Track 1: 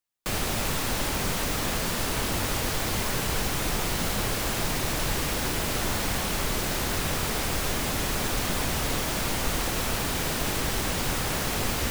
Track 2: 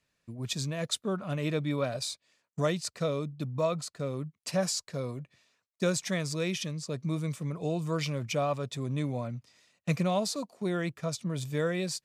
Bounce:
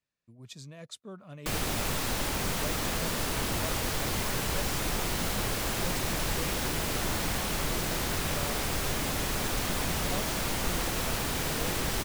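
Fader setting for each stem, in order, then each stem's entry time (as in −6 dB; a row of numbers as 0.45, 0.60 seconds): −3.0, −12.5 decibels; 1.20, 0.00 seconds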